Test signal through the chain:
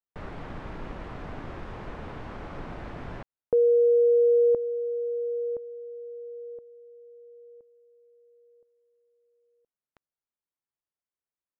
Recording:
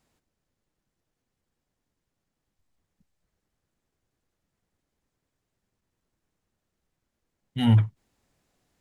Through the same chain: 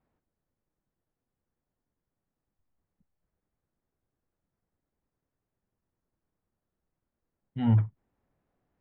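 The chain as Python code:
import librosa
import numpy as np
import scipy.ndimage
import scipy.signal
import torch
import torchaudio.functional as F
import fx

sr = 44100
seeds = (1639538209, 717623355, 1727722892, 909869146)

y = scipy.signal.sosfilt(scipy.signal.butter(2, 1500.0, 'lowpass', fs=sr, output='sos'), x)
y = y * 10.0 ** (-4.0 / 20.0)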